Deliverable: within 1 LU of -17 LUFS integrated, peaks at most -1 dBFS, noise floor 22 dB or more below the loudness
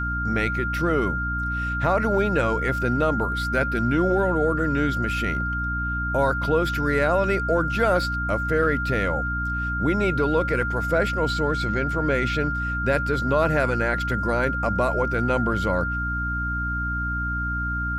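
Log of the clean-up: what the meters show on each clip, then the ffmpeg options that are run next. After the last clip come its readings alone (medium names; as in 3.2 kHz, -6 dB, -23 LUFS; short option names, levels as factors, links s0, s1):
hum 60 Hz; highest harmonic 300 Hz; hum level -26 dBFS; steady tone 1.4 kHz; tone level -26 dBFS; loudness -23.5 LUFS; peak level -9.0 dBFS; loudness target -17.0 LUFS
-> -af "bandreject=f=60:t=h:w=4,bandreject=f=120:t=h:w=4,bandreject=f=180:t=h:w=4,bandreject=f=240:t=h:w=4,bandreject=f=300:t=h:w=4"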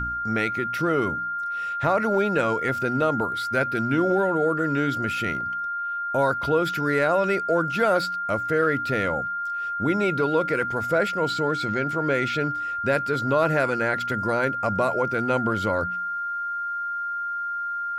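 hum not found; steady tone 1.4 kHz; tone level -26 dBFS
-> -af "bandreject=f=1400:w=30"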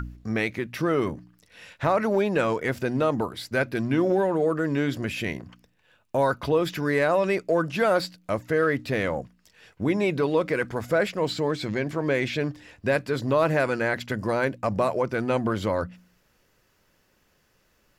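steady tone not found; loudness -25.5 LUFS; peak level -11.5 dBFS; loudness target -17.0 LUFS
-> -af "volume=2.66"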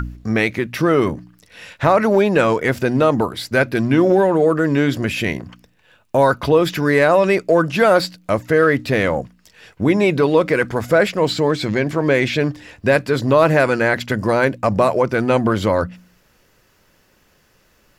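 loudness -17.0 LUFS; peak level -3.0 dBFS; noise floor -58 dBFS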